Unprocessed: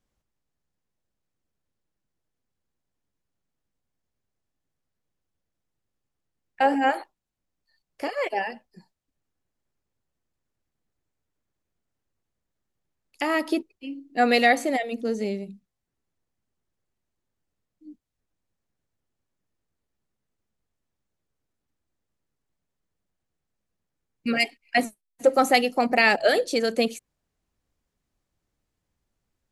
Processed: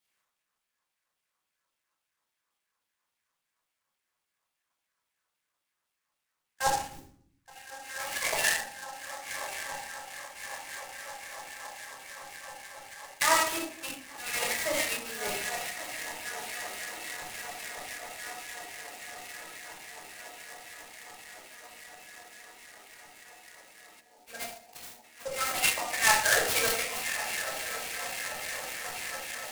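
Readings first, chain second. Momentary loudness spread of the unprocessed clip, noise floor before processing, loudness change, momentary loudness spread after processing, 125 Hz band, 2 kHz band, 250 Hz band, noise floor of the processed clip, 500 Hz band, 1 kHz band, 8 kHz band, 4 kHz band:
15 LU, -83 dBFS, -7.5 dB, 21 LU, n/a, -2.5 dB, -18.0 dB, -84 dBFS, -11.0 dB, -6.5 dB, +12.0 dB, 0.0 dB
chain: compressor 6:1, threshold -24 dBFS, peak gain reduction 11.5 dB; on a send: diffused feedback echo 1.184 s, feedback 75%, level -12 dB; on the sum: LFO high-pass saw down 3.6 Hz 900–3800 Hz; auto swell 0.123 s; spectral repair 6.77–7.16, 450–5700 Hz both; low shelf 230 Hz +10.5 dB; shoebox room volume 900 m³, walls furnished, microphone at 5.4 m; spectral gain 24–25.04, 970–4200 Hz -14 dB; noise-modulated delay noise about 5900 Hz, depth 0.059 ms

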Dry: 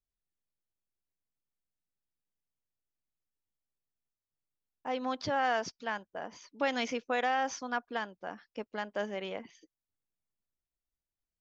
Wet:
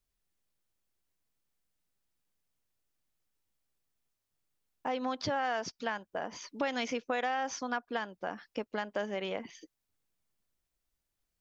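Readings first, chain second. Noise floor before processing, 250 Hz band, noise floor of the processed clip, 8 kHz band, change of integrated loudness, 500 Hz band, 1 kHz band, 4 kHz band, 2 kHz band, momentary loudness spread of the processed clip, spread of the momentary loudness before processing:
under -85 dBFS, +0.5 dB, -85 dBFS, n/a, -1.0 dB, 0.0 dB, -1.5 dB, 0.0 dB, -1.5 dB, 9 LU, 14 LU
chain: compressor 2.5:1, threshold -42 dBFS, peak gain reduction 11.5 dB; gain +8 dB

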